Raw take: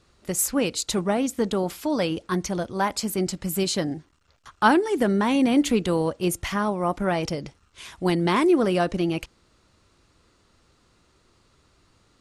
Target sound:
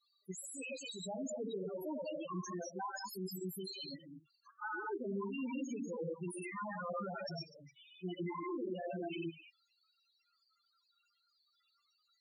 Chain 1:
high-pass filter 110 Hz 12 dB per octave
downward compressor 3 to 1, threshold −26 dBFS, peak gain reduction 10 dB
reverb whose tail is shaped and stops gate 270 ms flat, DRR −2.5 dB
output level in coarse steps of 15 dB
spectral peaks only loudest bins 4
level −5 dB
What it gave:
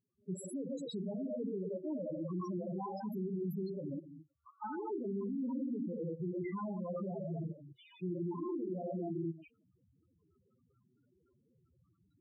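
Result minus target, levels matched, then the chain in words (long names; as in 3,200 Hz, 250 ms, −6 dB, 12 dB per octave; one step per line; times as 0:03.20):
1,000 Hz band −4.5 dB
high-pass filter 110 Hz 12 dB per octave
tilt shelving filter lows −9 dB, about 1,100 Hz
downward compressor 3 to 1, threshold −26 dBFS, peak gain reduction 11 dB
reverb whose tail is shaped and stops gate 270 ms flat, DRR −2.5 dB
output level in coarse steps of 15 dB
spectral peaks only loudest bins 4
level −5 dB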